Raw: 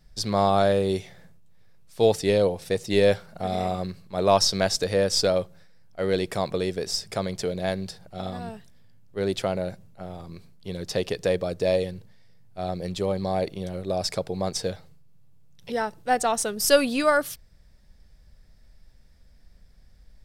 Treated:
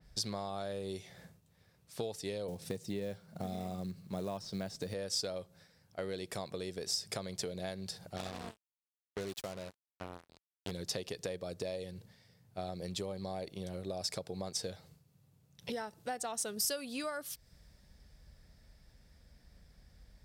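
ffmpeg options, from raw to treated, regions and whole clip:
-filter_complex "[0:a]asettb=1/sr,asplit=3[a][b][c];[a]atrim=end=2.484[d];[b]atrim=start=2.48:end=4.94,asetpts=PTS-STARTPTS,afade=t=in:d=0.004:c=qsin,afade=t=out:st=2.456:d=0.004:c=qsin,acrusher=bits=5:mode=log:mix=0:aa=0.000001,acrossover=split=2800[e][f];[f]acompressor=threshold=-33dB:ratio=4:attack=1:release=60[g];[e][g]amix=inputs=2:normalize=0,equalizer=f=170:w=0.64:g=10[h];[c]atrim=start=4.936[i];[d][h]acrossfade=d=0.004:c1=hsin:c2=qsin[j];[j][i]acrossfade=d=0.004:c1=qsin:c2=hsin,asettb=1/sr,asplit=3[k][l][m];[k]atrim=end=8.164[n];[l]atrim=start=8.16:end=10.71,asetpts=PTS-STARTPTS,afade=t=in:d=0.004:c=qsin,afade=t=out:st=2.546:d=0.004:c=qsin,acrusher=bits=4:mix=0:aa=0.5,aeval=exprs='val(0)*pow(10,-18*if(lt(mod(1.2*n/s,1),2*abs(1.2)/1000),1-mod(1.2*n/s,1)/(2*abs(1.2)/1000),(mod(1.2*n/s,1)-2*abs(1.2)/1000)/(1-2*abs(1.2)/1000))/20)':c=same[o];[m]atrim=start=10.706[p];[n][o]acrossfade=d=0.004:c1=hsin:c2=qsin[q];[q][p]acrossfade=d=0.004:c1=qsin:c2=hsin,highpass=47,acompressor=threshold=-36dB:ratio=8,adynamicequalizer=threshold=0.00178:dfrequency=3300:dqfactor=0.7:tfrequency=3300:tqfactor=0.7:attack=5:release=100:ratio=0.375:range=3:mode=boostabove:tftype=highshelf,volume=-1dB"

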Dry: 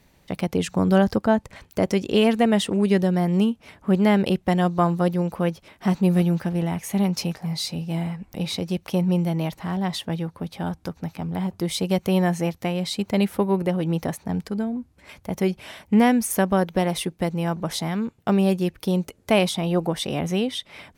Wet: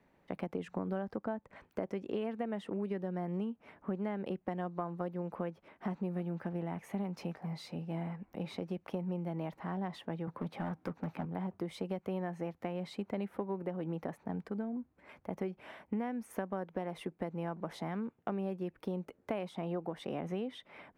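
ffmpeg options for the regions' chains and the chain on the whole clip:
-filter_complex "[0:a]asettb=1/sr,asplit=3[a][b][c];[a]atrim=end=10.274[d];[b]atrim=start=10.27:end=11.25,asetpts=PTS-STARTPTS,afade=t=in:d=0.004:c=qsin,afade=t=out:st=0.976:d=0.004:c=qsin,highpass=f=100:w=0.5412,highpass=f=100:w=1.3066,acontrast=73,volume=20dB,asoftclip=hard,volume=-20dB[e];[c]atrim=start=11.246[f];[d][e]acrossfade=d=0.004:c1=hsin:c2=qsin[g];[g][f]acrossfade=d=0.004:c1=qsin:c2=hsin,acrossover=split=180 2200:gain=0.251 1 0.112[h][i][j];[h][i][j]amix=inputs=3:normalize=0,acompressor=threshold=-27dB:ratio=6,volume=-6.5dB"

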